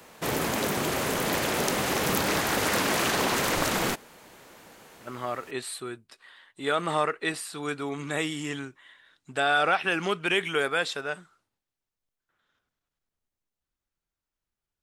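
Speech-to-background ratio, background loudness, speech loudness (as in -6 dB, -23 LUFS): -2.5 dB, -26.0 LUFS, -28.5 LUFS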